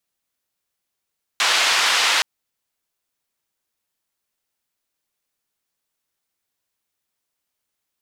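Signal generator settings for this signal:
band-limited noise 860–4,000 Hz, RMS −18 dBFS 0.82 s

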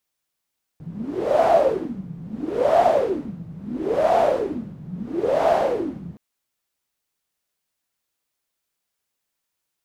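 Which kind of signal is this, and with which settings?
wind from filtered noise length 5.37 s, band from 160 Hz, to 690 Hz, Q 10, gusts 4, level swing 19.5 dB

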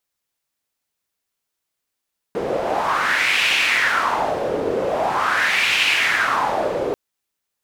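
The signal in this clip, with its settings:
wind from filtered noise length 4.59 s, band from 460 Hz, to 2,600 Hz, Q 3.7, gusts 2, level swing 4.5 dB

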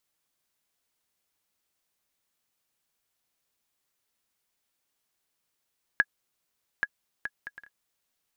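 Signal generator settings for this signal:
bouncing ball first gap 0.83 s, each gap 0.51, 1,670 Hz, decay 46 ms −9 dBFS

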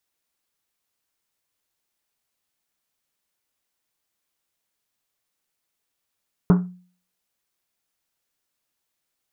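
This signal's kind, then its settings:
drum after Risset, pitch 180 Hz, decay 0.45 s, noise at 1,000 Hz, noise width 920 Hz, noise 10%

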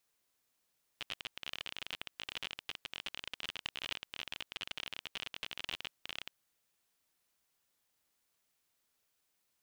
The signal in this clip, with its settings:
Geiger counter clicks 37 per second −23.5 dBFS 5.40 s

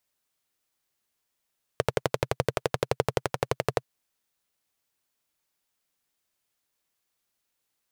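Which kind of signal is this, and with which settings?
pulse-train model of a single-cylinder engine, steady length 2.03 s, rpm 1,400, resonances 130/460 Hz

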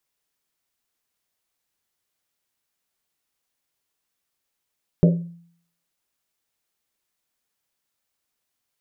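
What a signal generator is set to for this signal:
drum after Risset, pitch 170 Hz, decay 0.60 s, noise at 540 Hz, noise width 150 Hz, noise 15%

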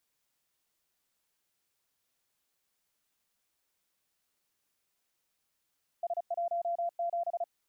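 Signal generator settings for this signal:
Morse code "S17" 35 words per minute 687 Hz −29 dBFS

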